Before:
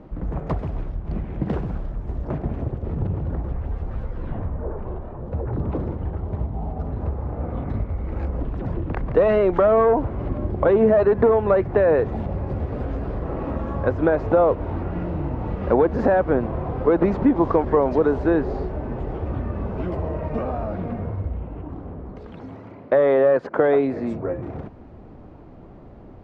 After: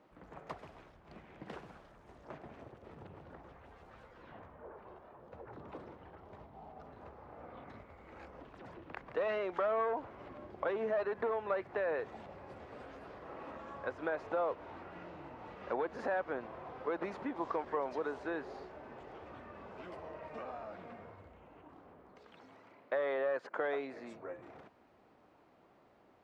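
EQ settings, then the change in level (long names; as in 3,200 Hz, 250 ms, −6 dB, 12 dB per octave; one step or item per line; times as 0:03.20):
first difference
high-shelf EQ 3,300 Hz −11.5 dB
+5.0 dB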